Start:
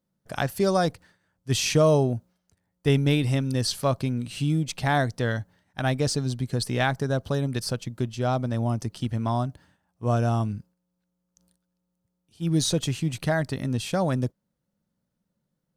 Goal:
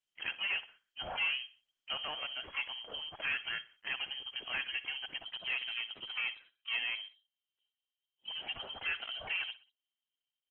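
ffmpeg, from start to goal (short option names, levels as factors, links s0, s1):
-filter_complex "[0:a]agate=range=0.224:threshold=0.00141:ratio=16:detection=peak,acrossover=split=530|2400[s0][s1][s2];[s0]acompressor=threshold=0.0141:ratio=20[s3];[s3][s1][s2]amix=inputs=3:normalize=0,asplit=3[s4][s5][s6];[s5]asetrate=29433,aresample=44100,atempo=1.49831,volume=0.2[s7];[s6]asetrate=88200,aresample=44100,atempo=0.5,volume=0.282[s8];[s4][s7][s8]amix=inputs=3:normalize=0,asoftclip=type=tanh:threshold=0.0596,lowpass=f=2800:t=q:w=0.5098,lowpass=f=2800:t=q:w=0.6013,lowpass=f=2800:t=q:w=0.9,lowpass=f=2800:t=q:w=2.563,afreqshift=-3300,atempo=1.5,asplit=2[s9][s10];[s10]aecho=0:1:61|122|183:0.15|0.0569|0.0216[s11];[s9][s11]amix=inputs=2:normalize=0,volume=0.668" -ar 48000 -c:a libopus -b:a 16k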